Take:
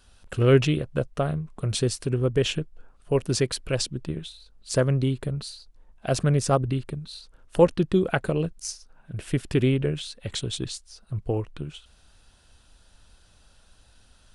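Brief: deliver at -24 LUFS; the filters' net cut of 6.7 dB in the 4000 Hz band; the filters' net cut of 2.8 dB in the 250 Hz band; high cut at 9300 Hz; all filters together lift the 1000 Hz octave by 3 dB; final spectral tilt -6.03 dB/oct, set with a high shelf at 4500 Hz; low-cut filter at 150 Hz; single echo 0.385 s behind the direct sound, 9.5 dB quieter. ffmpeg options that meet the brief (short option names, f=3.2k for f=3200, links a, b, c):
-af "highpass=150,lowpass=9.3k,equalizer=f=250:t=o:g=-3,equalizer=f=1k:t=o:g=5,equalizer=f=4k:t=o:g=-5,highshelf=f=4.5k:g=-7.5,aecho=1:1:385:0.335,volume=3.5dB"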